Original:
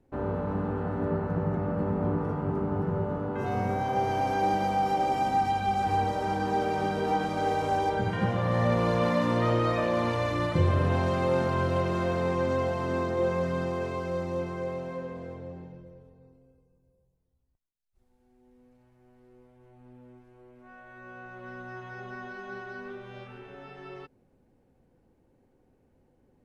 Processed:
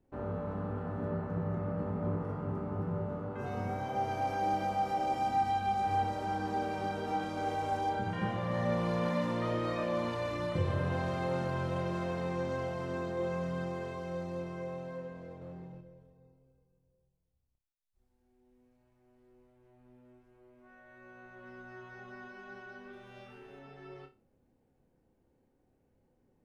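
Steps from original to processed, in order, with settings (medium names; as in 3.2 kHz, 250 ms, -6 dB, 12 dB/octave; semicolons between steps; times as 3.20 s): 22.93–23.59 s: treble shelf 6.1 kHz +11 dB; flutter echo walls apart 5 m, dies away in 0.26 s; 15.41–15.81 s: waveshaping leveller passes 1; trim -7.5 dB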